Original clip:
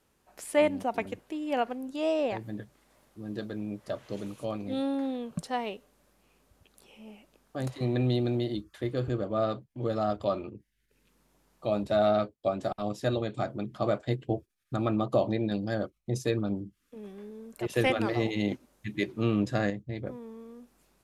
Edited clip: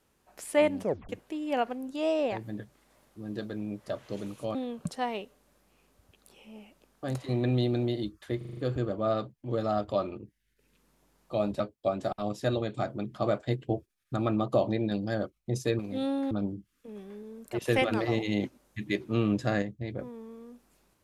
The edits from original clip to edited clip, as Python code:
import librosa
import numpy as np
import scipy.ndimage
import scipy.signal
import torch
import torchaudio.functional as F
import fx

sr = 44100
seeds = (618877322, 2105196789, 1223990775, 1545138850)

y = fx.edit(x, sr, fx.tape_stop(start_s=0.81, length_s=0.28),
    fx.move(start_s=4.55, length_s=0.52, to_s=16.39),
    fx.stutter(start_s=8.89, slice_s=0.04, count=6),
    fx.cut(start_s=11.92, length_s=0.28), tone=tone)